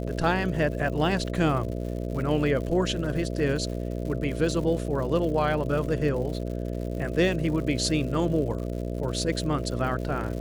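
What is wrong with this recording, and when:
mains buzz 60 Hz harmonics 11 −31 dBFS
surface crackle 150 per second −35 dBFS

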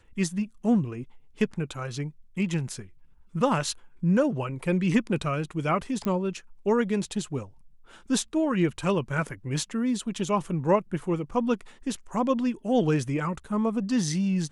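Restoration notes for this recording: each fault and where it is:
0:06.05: click −18 dBFS

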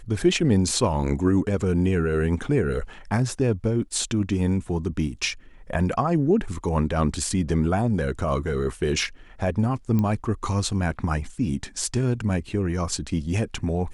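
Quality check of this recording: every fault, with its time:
0:09.99: click −14 dBFS

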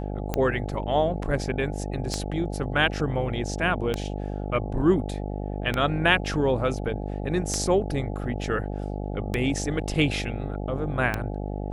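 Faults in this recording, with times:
mains buzz 50 Hz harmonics 17 −31 dBFS
scratch tick 33 1/3 rpm −11 dBFS

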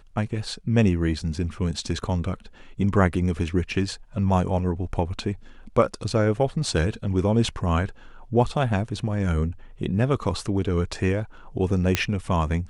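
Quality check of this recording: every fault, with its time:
0:11.95: click −5 dBFS

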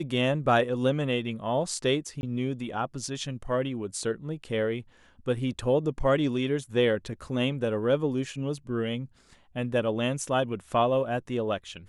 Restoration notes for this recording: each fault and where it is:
0:02.21–0:02.23: drop-out 21 ms

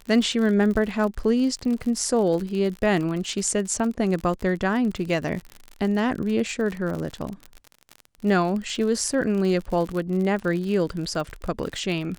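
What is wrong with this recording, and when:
surface crackle 50 per second −29 dBFS

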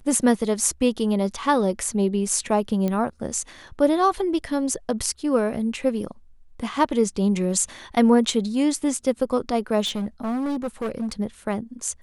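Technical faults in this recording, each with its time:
0:02.88: click −14 dBFS
0:09.85–0:11.12: clipping −23 dBFS

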